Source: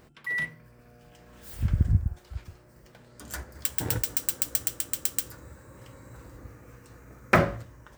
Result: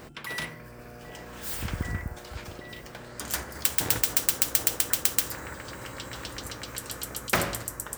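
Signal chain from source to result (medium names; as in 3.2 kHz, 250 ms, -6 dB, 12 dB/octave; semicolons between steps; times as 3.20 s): repeats whose band climbs or falls 782 ms, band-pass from 530 Hz, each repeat 1.4 oct, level -5 dB; spectrum-flattening compressor 2:1; trim +2 dB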